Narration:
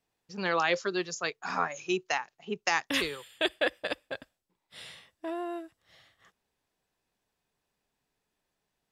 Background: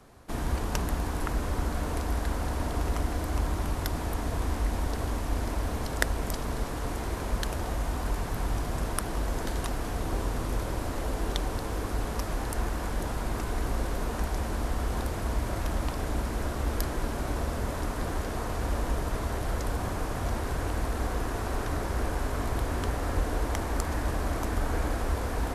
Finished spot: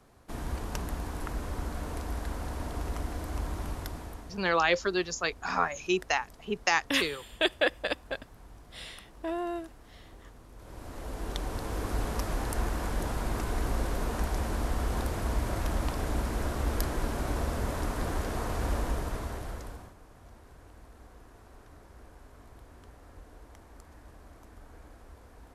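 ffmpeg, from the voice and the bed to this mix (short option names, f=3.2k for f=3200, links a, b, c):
-filter_complex "[0:a]adelay=4000,volume=2dB[a];[1:a]volume=15.5dB,afade=t=out:st=3.7:d=0.72:silence=0.158489,afade=t=in:st=10.55:d=1.42:silence=0.0891251,afade=t=out:st=18.71:d=1.23:silence=0.0794328[b];[a][b]amix=inputs=2:normalize=0"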